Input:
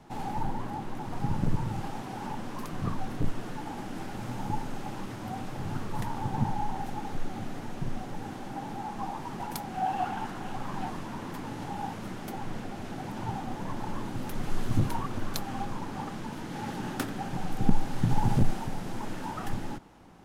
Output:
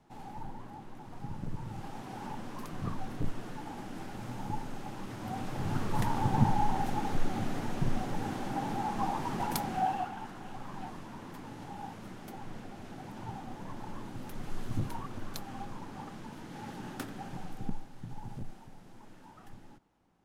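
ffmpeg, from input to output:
-af "volume=3dB,afade=t=in:st=1.52:d=0.62:silence=0.473151,afade=t=in:st=4.98:d=1.08:silence=0.421697,afade=t=out:st=9.64:d=0.45:silence=0.298538,afade=t=out:st=17.31:d=0.58:silence=0.298538"

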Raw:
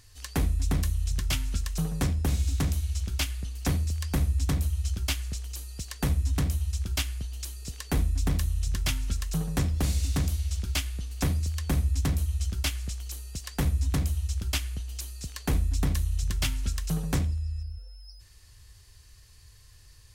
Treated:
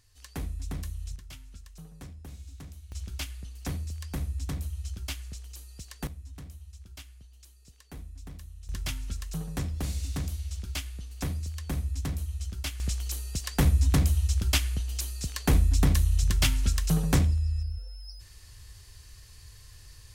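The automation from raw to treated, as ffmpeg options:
-af "asetnsamples=n=441:p=0,asendcmd='1.16 volume volume -18dB;2.92 volume volume -7dB;6.07 volume volume -17.5dB;8.69 volume volume -5.5dB;12.8 volume volume 4dB',volume=-9dB"

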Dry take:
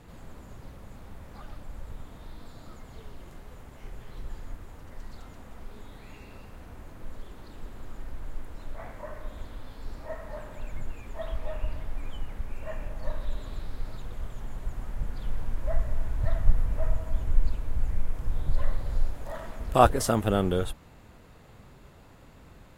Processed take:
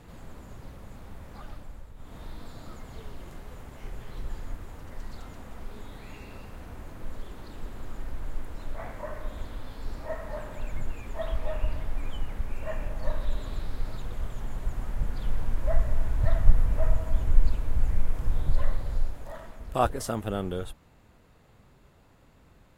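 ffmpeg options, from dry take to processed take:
-af "volume=12dB,afade=t=out:st=1.5:d=0.44:silence=0.354813,afade=t=in:st=1.94:d=0.24:silence=0.281838,afade=t=out:st=18.27:d=1.29:silence=0.354813"

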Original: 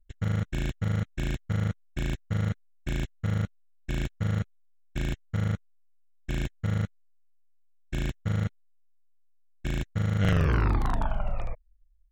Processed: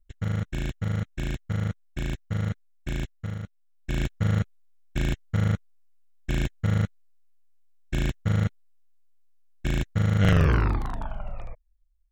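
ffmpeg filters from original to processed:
-af "volume=12dB,afade=t=out:st=3.04:d=0.37:silence=0.398107,afade=t=in:st=3.41:d=0.68:silence=0.251189,afade=t=out:st=10.45:d=0.44:silence=0.354813"

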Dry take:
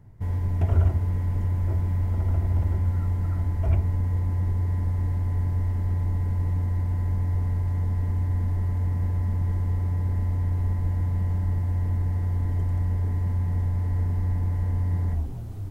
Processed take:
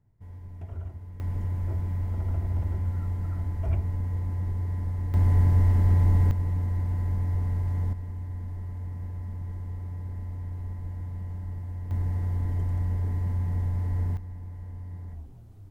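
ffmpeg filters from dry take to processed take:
-af "asetnsamples=n=441:p=0,asendcmd='1.2 volume volume -4.5dB;5.14 volume volume 5dB;6.31 volume volume -2dB;7.93 volume volume -10dB;11.91 volume volume -2.5dB;14.17 volume volume -14dB',volume=-16.5dB"

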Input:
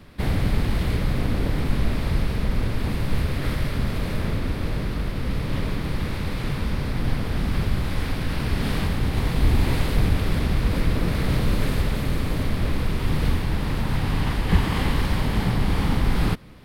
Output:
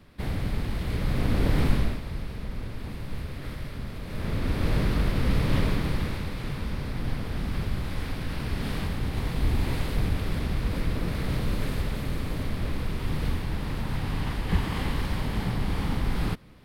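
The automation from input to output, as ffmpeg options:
-af "volume=14.5dB,afade=t=in:st=0.84:d=0.8:silence=0.375837,afade=t=out:st=1.64:d=0.37:silence=0.237137,afade=t=in:st=4.06:d=0.71:silence=0.223872,afade=t=out:st=5.56:d=0.75:silence=0.398107"

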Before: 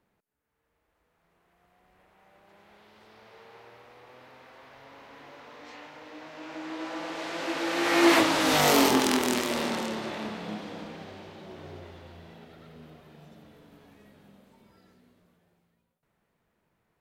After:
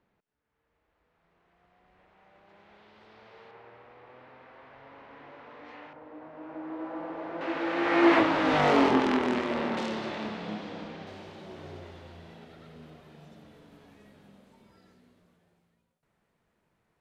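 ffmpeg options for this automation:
-af "asetnsamples=n=441:p=0,asendcmd='3.51 lowpass f 2400;5.93 lowpass f 1100;7.41 lowpass f 2200;9.77 lowpass f 5000;11.07 lowpass f 11000',lowpass=4.2k"

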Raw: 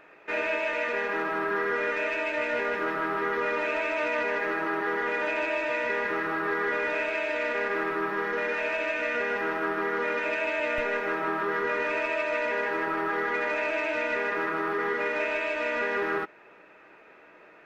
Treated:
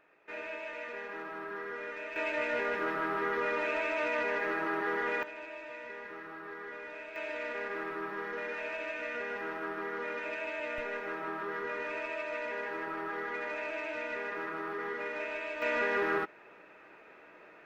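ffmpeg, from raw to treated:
-af "asetnsamples=n=441:p=0,asendcmd='2.16 volume volume -4dB;5.23 volume volume -16dB;7.16 volume volume -9dB;15.62 volume volume -2dB',volume=-12.5dB"

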